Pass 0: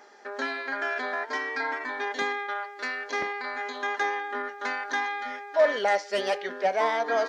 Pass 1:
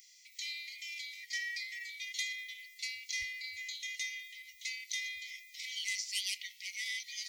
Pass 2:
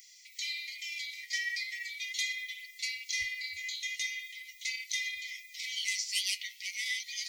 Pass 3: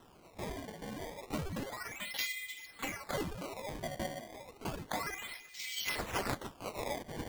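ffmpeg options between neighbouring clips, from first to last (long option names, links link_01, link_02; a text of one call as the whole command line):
ffmpeg -i in.wav -af "aemphasis=mode=production:type=50fm,afftfilt=real='re*(1-between(b*sr/4096,100,1900))':imag='im*(1-between(b*sr/4096,100,1900))':win_size=4096:overlap=0.75,equalizer=frequency=1100:width=0.33:gain=-9.5,volume=2dB" out.wav
ffmpeg -i in.wav -af "flanger=delay=2.9:depth=9.5:regen=42:speed=0.41:shape=triangular,volume=8dB" out.wav
ffmpeg -i in.wav -af "acrusher=samples=19:mix=1:aa=0.000001:lfo=1:lforange=30.4:lforate=0.31,volume=-3dB" out.wav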